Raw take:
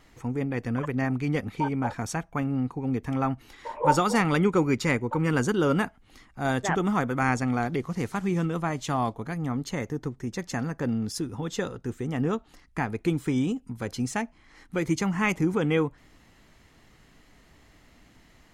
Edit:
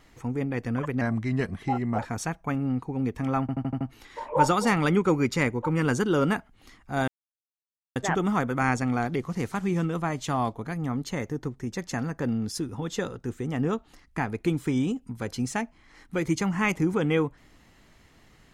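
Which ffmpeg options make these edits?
-filter_complex "[0:a]asplit=9[a][b][c][d][e][f][g][h][i];[a]atrim=end=1.014[j];[b]atrim=start=1.01:end=1.87,asetpts=PTS-STARTPTS,asetrate=38808,aresample=44100[k];[c]atrim=start=1.866:end=3.372[l];[d]atrim=start=3.288:end=3.372[m];[e]atrim=start=3.288:end=3.372[n];[f]atrim=start=3.288:end=3.372[o];[g]atrim=start=3.288:end=3.372[p];[h]atrim=start=3.288:end=6.56,asetpts=PTS-STARTPTS,afade=t=out:st=3.268:d=0.004:c=hsin,apad=pad_dur=0.88[q];[i]atrim=start=6.56,asetpts=PTS-STARTPTS,afade=t=in:d=0.004:c=hsin[r];[j][k]acrossfade=d=0.004:c1=hsin:c2=hsin[s];[s][l]acrossfade=d=0.004:c1=hsin:c2=hsin[t];[t][m]acrossfade=d=0.004:c1=hsin:c2=hsin[u];[u][n]acrossfade=d=0.004:c1=hsin:c2=hsin[v];[v][o]acrossfade=d=0.004:c1=hsin:c2=hsin[w];[w][p]acrossfade=d=0.004:c1=hsin:c2=hsin[x];[q][r]concat=n=2:v=0:a=1[y];[x][y]acrossfade=d=0.004:c1=hsin:c2=hsin"

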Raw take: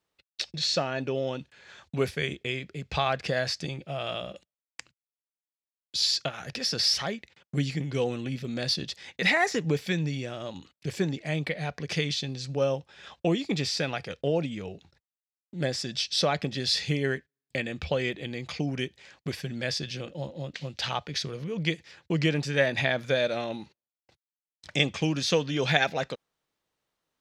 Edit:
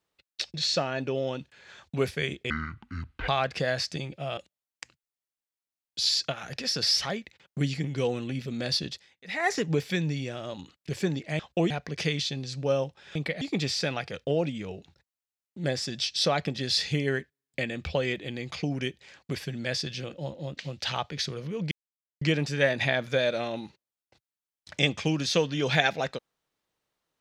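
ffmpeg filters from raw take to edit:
-filter_complex "[0:a]asplit=12[a][b][c][d][e][f][g][h][i][j][k][l];[a]atrim=end=2.504[m];[b]atrim=start=2.5:end=2.97,asetpts=PTS-STARTPTS,asetrate=26460,aresample=44100[n];[c]atrim=start=2.966:end=4.062[o];[d]atrim=start=4.338:end=9.13,asetpts=PTS-STARTPTS,afade=t=out:st=4.522:d=0.27:c=qua:silence=0.0891251[p];[e]atrim=start=9.13:end=9.18,asetpts=PTS-STARTPTS,volume=-21dB[q];[f]atrim=start=9.18:end=11.362,asetpts=PTS-STARTPTS,afade=t=in:d=0.27:c=qua:silence=0.0891251[r];[g]atrim=start=13.068:end=13.382[s];[h]atrim=start=11.618:end=13.072[t];[i]atrim=start=11.358:end=11.622[u];[j]atrim=start=13.378:end=21.68,asetpts=PTS-STARTPTS,afade=t=out:st=8.298:d=0.004:c=hsin[v];[k]atrim=start=21.68:end=22.18,asetpts=PTS-STARTPTS,volume=0[w];[l]atrim=start=22.18,asetpts=PTS-STARTPTS,afade=t=in:d=0.004:c=hsin[x];[m][n]acrossfade=d=0.004:c1=hsin:c2=hsin[y];[y][o]acrossfade=d=0.004:c1=hsin:c2=hsin[z];[p][q][r]concat=n=3:v=0:a=1[aa];[z][aa]acrossfade=d=0.004:c1=hsin:c2=hsin[ab];[ab][s]acrossfade=d=0.004:c1=hsin:c2=hsin[ac];[ac][t]acrossfade=d=0.004:c1=hsin:c2=hsin[ad];[ad][u]acrossfade=d=0.004:c1=hsin:c2=hsin[ae];[v][w][x]concat=n=3:v=0:a=1[af];[ae][af]acrossfade=d=0.004:c1=hsin:c2=hsin"

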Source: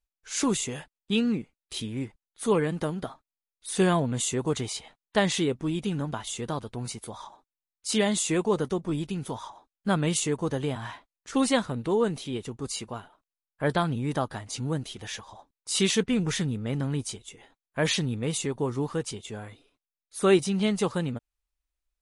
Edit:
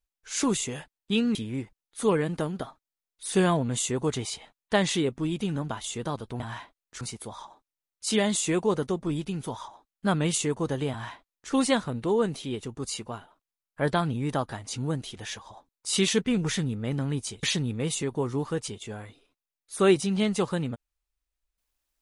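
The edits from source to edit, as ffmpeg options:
-filter_complex "[0:a]asplit=5[a][b][c][d][e];[a]atrim=end=1.352[f];[b]atrim=start=1.778:end=6.832[g];[c]atrim=start=10.728:end=11.342[h];[d]atrim=start=6.828:end=17.252[i];[e]atrim=start=17.858[j];[f][g]acrossfade=d=0.004:c1=hsin:c2=hsin[k];[k][h]acrossfade=d=0.004:c1=hsin:c2=hsin[l];[l][i]acrossfade=d=0.004:c1=hsin:c2=hsin[m];[m][j]acrossfade=d=0.004:c1=hsin:c2=hsin"

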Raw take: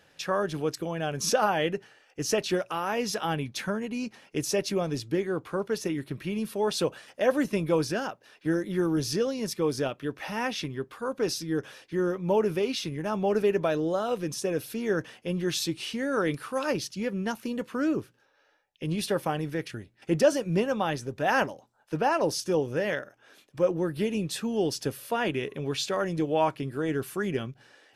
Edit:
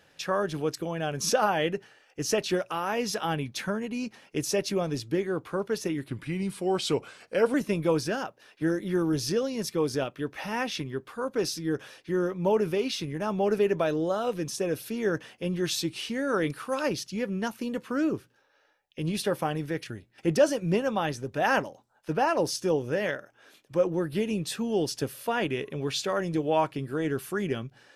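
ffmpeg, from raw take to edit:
-filter_complex "[0:a]asplit=3[a][b][c];[a]atrim=end=6.084[d];[b]atrim=start=6.08:end=7.38,asetpts=PTS-STARTPTS,asetrate=39249,aresample=44100[e];[c]atrim=start=7.376[f];[d][e]acrossfade=d=0.004:c1=hsin:c2=hsin[g];[g][f]acrossfade=d=0.004:c1=hsin:c2=hsin"

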